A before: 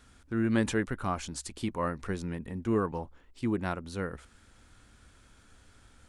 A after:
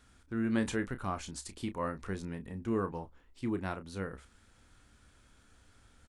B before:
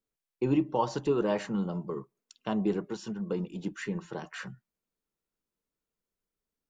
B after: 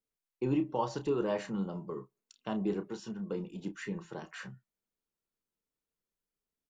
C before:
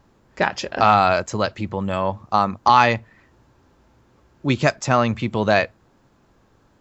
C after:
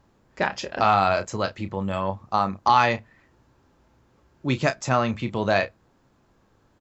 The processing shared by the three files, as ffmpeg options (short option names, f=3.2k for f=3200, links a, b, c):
-filter_complex "[0:a]asplit=2[a][b];[b]adelay=31,volume=-10.5dB[c];[a][c]amix=inputs=2:normalize=0,volume=-4.5dB"